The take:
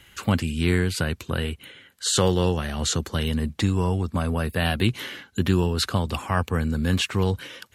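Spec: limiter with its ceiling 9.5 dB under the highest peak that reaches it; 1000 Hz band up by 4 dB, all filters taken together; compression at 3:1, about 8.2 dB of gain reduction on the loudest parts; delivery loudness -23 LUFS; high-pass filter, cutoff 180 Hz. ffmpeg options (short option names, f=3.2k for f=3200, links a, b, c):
-af "highpass=180,equalizer=f=1k:t=o:g=5,acompressor=threshold=-28dB:ratio=3,volume=11.5dB,alimiter=limit=-12dB:level=0:latency=1"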